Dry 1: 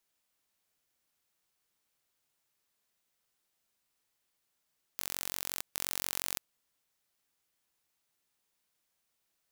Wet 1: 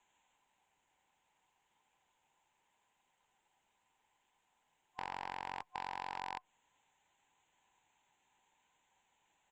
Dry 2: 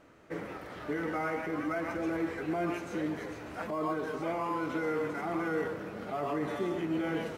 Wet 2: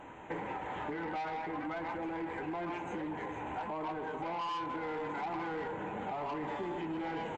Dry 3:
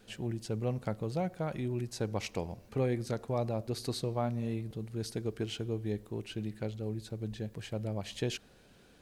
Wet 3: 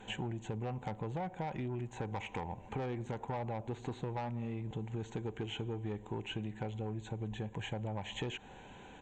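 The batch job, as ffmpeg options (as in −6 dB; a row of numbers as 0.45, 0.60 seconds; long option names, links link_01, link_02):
-filter_complex "[0:a]superequalizer=9b=3.55:10b=0.708,acrossover=split=2900[link_01][link_02];[link_02]acompressor=threshold=-47dB:ratio=4:attack=1:release=60[link_03];[link_01][link_03]amix=inputs=2:normalize=0,asuperstop=centerf=5000:order=4:qfactor=1.1,highshelf=frequency=2700:gain=7.5,aresample=16000,asoftclip=type=tanh:threshold=-29dB,aresample=44100,acompressor=threshold=-43dB:ratio=6,volume=6.5dB" -ar 48000 -c:a libopus -b:a 48k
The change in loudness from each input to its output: −8.5, −4.0, −4.0 LU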